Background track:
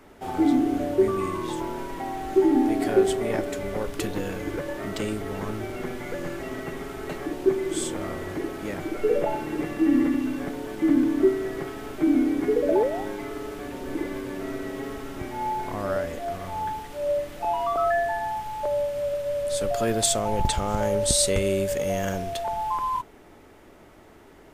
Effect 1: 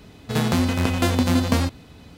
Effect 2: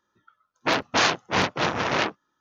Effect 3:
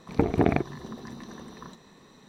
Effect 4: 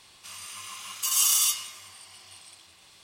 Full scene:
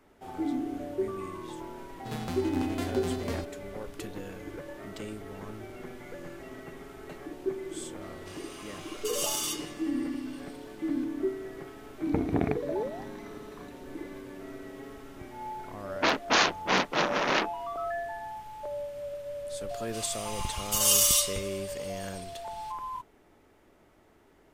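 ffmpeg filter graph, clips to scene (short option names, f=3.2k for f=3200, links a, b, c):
-filter_complex "[4:a]asplit=2[a][b];[0:a]volume=-10.5dB[c];[a]highshelf=f=5.7k:g=-9.5[d];[3:a]bass=f=250:g=2,treble=f=4k:g=-4[e];[2:a]highpass=f=170:w=0.5412,highpass=f=170:w=1.3066[f];[b]aecho=1:1:6.7:0.74[g];[1:a]atrim=end=2.17,asetpts=PTS-STARTPTS,volume=-15dB,afade=t=in:d=0.004:c=hsin,afade=t=out:st=2.166:d=0.004:c=hsin,adelay=1760[h];[d]atrim=end=3.03,asetpts=PTS-STARTPTS,volume=-4dB,afade=t=in:d=0.004:c=hsin,afade=t=out:st=3.026:d=0.004:c=hsin,adelay=353682S[i];[e]atrim=end=2.28,asetpts=PTS-STARTPTS,volume=-7dB,afade=t=in:d=0.004:c=hsin,afade=t=out:st=2.276:d=0.004:c=hsin,adelay=11950[j];[f]atrim=end=2.4,asetpts=PTS-STARTPTS,volume=-2.5dB,afade=t=in:d=0.004:c=hsin,afade=t=out:st=2.396:d=0.004:c=hsin,adelay=15360[k];[g]atrim=end=3.03,asetpts=PTS-STARTPTS,volume=-2dB,afade=t=in:d=0.004:c=hsin,afade=t=out:st=3.026:d=0.004:c=hsin,adelay=19690[l];[c][h][i][j][k][l]amix=inputs=6:normalize=0"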